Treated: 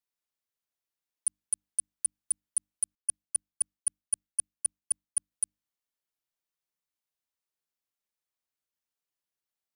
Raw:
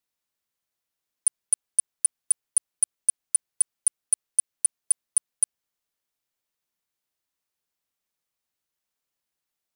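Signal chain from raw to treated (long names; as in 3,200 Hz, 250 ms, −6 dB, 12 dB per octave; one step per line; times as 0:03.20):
mains-hum notches 50/100/150/200/250/300 Hz
0:02.95–0:05.31: multiband upward and downward expander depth 100%
level −7.5 dB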